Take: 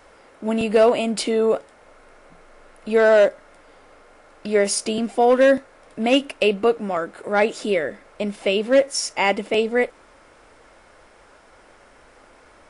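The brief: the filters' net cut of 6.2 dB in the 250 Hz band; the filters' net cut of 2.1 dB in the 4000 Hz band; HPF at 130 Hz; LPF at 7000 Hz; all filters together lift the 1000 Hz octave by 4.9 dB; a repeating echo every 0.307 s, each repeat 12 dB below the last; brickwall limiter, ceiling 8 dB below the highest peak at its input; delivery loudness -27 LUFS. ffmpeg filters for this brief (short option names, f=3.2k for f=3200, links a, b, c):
-af "highpass=130,lowpass=7k,equalizer=f=250:t=o:g=-7,equalizer=f=1k:t=o:g=8,equalizer=f=4k:t=o:g=-3.5,alimiter=limit=-10.5dB:level=0:latency=1,aecho=1:1:307|614|921:0.251|0.0628|0.0157,volume=-4dB"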